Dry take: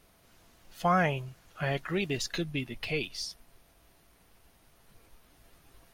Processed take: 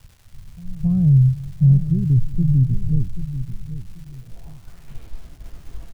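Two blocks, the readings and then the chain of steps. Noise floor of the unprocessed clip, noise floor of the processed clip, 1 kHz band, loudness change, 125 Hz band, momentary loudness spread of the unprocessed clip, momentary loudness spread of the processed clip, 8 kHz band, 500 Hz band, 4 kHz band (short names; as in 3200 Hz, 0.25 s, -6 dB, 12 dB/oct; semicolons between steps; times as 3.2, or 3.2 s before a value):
-63 dBFS, -46 dBFS, under -20 dB, +13.0 dB, +22.0 dB, 12 LU, 17 LU, n/a, under -10 dB, under -15 dB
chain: RIAA curve playback; expander -41 dBFS; in parallel at +2 dB: limiter -23 dBFS, peak gain reduction 11 dB; on the sum: pre-echo 0.268 s -20.5 dB; low-pass sweep 130 Hz -> 7500 Hz, 3.76–5.29; crackle 550/s -44 dBFS; on a send: feedback echo 0.785 s, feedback 27%, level -12 dB; on the sum: gain +1.5 dB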